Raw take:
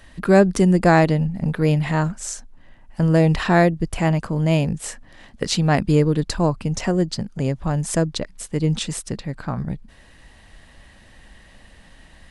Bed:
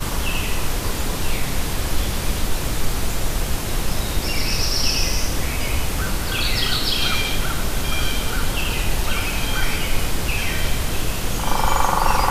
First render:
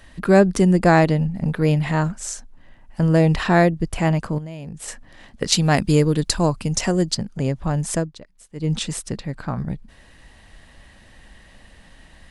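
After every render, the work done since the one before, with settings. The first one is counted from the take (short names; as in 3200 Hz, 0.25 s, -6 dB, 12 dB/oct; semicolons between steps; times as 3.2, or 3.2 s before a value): 4.38–4.88 compressor 8:1, threshold -30 dBFS; 5.52–7.15 high shelf 4000 Hz +10.5 dB; 7.93–8.73 dip -15 dB, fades 0.19 s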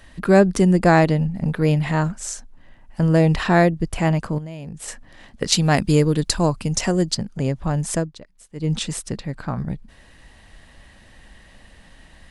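nothing audible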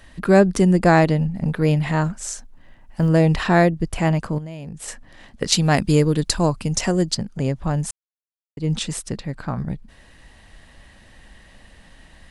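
2.15–3.09 short-mantissa float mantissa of 6-bit; 7.91–8.57 mute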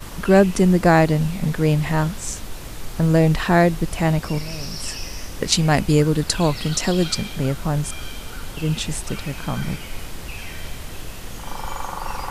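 add bed -11 dB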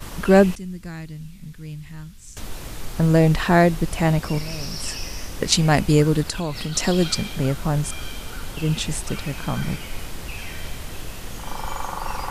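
0.55–2.37 passive tone stack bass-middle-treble 6-0-2; 6.22–6.76 compressor 2.5:1, threshold -25 dBFS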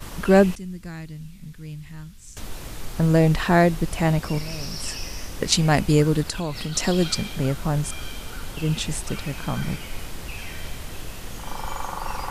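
gain -1.5 dB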